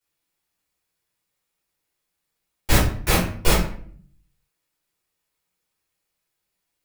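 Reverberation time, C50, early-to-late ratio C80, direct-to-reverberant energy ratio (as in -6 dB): 0.55 s, 4.5 dB, 9.0 dB, -9.5 dB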